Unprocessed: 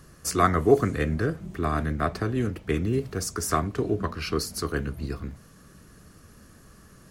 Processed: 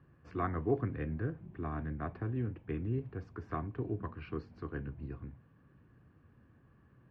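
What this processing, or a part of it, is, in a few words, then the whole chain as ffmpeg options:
bass cabinet: -af "highpass=70,equalizer=f=120:t=q:w=4:g=5,equalizer=f=190:t=q:w=4:g=-6,equalizer=f=430:t=q:w=4:g=-5,equalizer=f=620:t=q:w=4:g=-7,equalizer=f=1.3k:t=q:w=4:g=-9,equalizer=f=2k:t=q:w=4:g=-7,lowpass=f=2.2k:w=0.5412,lowpass=f=2.2k:w=1.3066,volume=-9dB"

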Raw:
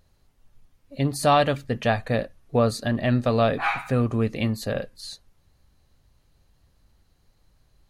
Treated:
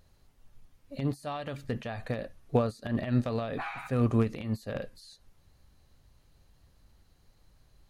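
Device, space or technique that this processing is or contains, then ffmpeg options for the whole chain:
de-esser from a sidechain: -filter_complex "[0:a]asplit=2[a][b];[b]highpass=5.3k,apad=whole_len=348144[c];[a][c]sidechaincompress=threshold=-53dB:ratio=6:attack=0.92:release=84"

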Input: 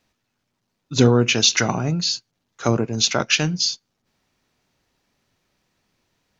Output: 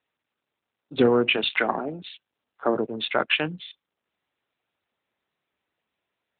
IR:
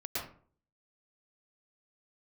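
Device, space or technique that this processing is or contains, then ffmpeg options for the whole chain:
telephone: -filter_complex "[0:a]afwtdn=0.0282,asplit=3[a][b][c];[a]afade=t=out:st=1.36:d=0.02[d];[b]highpass=f=190:w=0.5412,highpass=f=190:w=1.3066,afade=t=in:st=1.36:d=0.02,afade=t=out:st=2.74:d=0.02[e];[c]afade=t=in:st=2.74:d=0.02[f];[d][e][f]amix=inputs=3:normalize=0,highpass=310,lowpass=3.5k" -ar 8000 -c:a libopencore_amrnb -b:a 12200

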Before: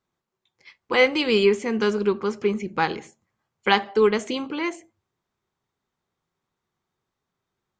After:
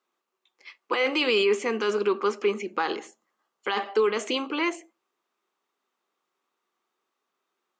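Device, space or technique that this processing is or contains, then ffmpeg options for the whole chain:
laptop speaker: -filter_complex "[0:a]asettb=1/sr,asplit=3[a][b][c];[a]atrim=end=2.774[d];[b]atrim=start=2.77:end=3.77,asetpts=PTS-STARTPTS,afade=t=in:d=0.004:c=qsin,afade=t=out:st=0.996:d=0.004:c=qsin,equalizer=f=2.4k:t=o:w=0.25:g=-7.5[e];[c]atrim=start=3.766[f];[d][e]acrossfade=d=0.004:c1=hsin:c2=qsin[g];[g][f]acrossfade=d=0.004:c1=qsin:c2=hsin,highpass=f=280:w=0.5412,highpass=f=280:w=1.3066,equalizer=f=1.2k:t=o:w=0.26:g=6,equalizer=f=2.7k:t=o:w=0.35:g=5,alimiter=limit=-15.5dB:level=0:latency=1:release=13,volume=1dB"

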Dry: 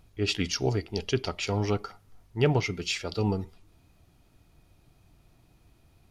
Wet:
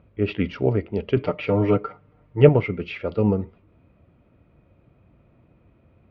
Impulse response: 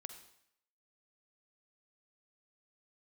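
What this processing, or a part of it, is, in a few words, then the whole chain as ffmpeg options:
bass cabinet: -filter_complex "[0:a]highpass=62,equalizer=f=220:t=q:w=4:g=5,equalizer=f=540:t=q:w=4:g=9,equalizer=f=790:t=q:w=4:g=-7,equalizer=f=1.7k:t=q:w=4:g=-5,lowpass=f=2.3k:w=0.5412,lowpass=f=2.3k:w=1.3066,asettb=1/sr,asplit=3[a][b][c];[a]atrim=end=1.164[d];[b]atrim=start=1.16:end=2.49,asetpts=PTS-STARTPTS,afade=t=in:d=0.004:c=qsin,afade=t=out:st=1.326:d=0.004:c=qsin,aecho=1:1:6.6:0.92,atrim=end_sample=58653[e];[c]atrim=start=2.486[f];[d][e]acrossfade=d=0.004:c1=hsin:c2=qsin[g];[g][f]acrossfade=d=0.004:c1=qsin:c2=hsin,volume=5dB"

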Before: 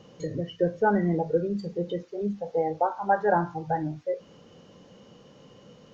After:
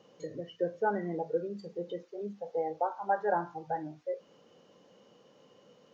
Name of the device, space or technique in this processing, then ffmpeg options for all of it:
filter by subtraction: -filter_complex "[0:a]asplit=2[a][b];[b]lowpass=500,volume=-1[c];[a][c]amix=inputs=2:normalize=0,volume=-8dB"

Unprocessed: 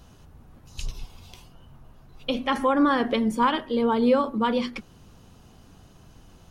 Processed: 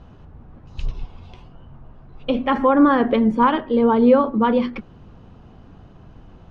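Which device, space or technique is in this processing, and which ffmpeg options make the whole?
phone in a pocket: -af "lowpass=3.6k,highshelf=f=2.4k:g=-12,volume=7dB"

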